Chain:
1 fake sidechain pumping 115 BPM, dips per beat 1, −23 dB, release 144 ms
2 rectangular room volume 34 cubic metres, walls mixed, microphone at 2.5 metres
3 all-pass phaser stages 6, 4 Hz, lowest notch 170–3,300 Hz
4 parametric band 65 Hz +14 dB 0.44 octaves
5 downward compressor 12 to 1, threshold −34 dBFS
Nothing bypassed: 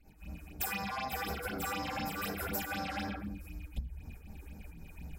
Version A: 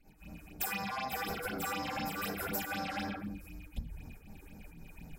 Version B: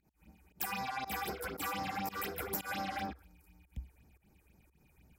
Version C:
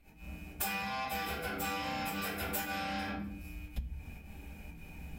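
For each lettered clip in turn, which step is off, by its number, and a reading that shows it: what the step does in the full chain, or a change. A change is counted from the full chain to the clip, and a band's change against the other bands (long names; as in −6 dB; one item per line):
4, 125 Hz band −2.5 dB
2, change in crest factor +3.5 dB
3, 125 Hz band −1.5 dB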